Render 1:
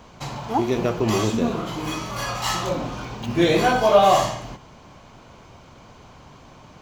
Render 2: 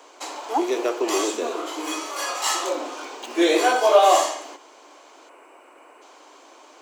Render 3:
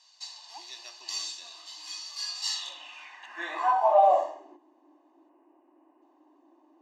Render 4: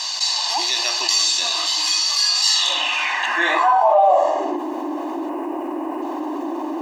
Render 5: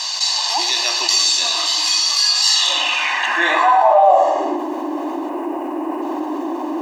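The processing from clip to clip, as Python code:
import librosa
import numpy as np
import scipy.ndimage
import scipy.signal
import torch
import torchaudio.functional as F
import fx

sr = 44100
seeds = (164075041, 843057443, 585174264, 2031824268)

y1 = fx.spec_box(x, sr, start_s=5.29, length_s=0.73, low_hz=3000.0, high_hz=7500.0, gain_db=-15)
y1 = scipy.signal.sosfilt(scipy.signal.butter(12, 290.0, 'highpass', fs=sr, output='sos'), y1)
y1 = fx.peak_eq(y1, sr, hz=8300.0, db=9.5, octaves=0.64)
y2 = y1 + 0.87 * np.pad(y1, (int(1.1 * sr / 1000.0), 0))[:len(y1)]
y2 = 10.0 ** (-5.5 / 20.0) * np.tanh(y2 / 10.0 ** (-5.5 / 20.0))
y2 = fx.filter_sweep_bandpass(y2, sr, from_hz=4600.0, to_hz=320.0, start_s=2.48, end_s=4.61, q=4.4)
y3 = fx.env_flatten(y2, sr, amount_pct=70)
y3 = y3 * 10.0 ** (4.0 / 20.0)
y4 = fx.echo_feedback(y3, sr, ms=113, feedback_pct=49, wet_db=-11)
y4 = y4 * 10.0 ** (2.0 / 20.0)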